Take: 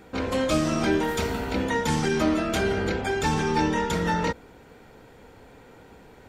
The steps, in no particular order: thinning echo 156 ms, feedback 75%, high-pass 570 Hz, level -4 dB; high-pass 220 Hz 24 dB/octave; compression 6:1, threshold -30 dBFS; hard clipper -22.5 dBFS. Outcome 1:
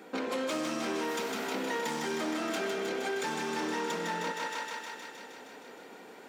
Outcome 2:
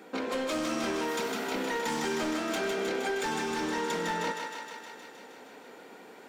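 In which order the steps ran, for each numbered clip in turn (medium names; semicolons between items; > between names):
hard clipper > thinning echo > compression > high-pass; high-pass > hard clipper > compression > thinning echo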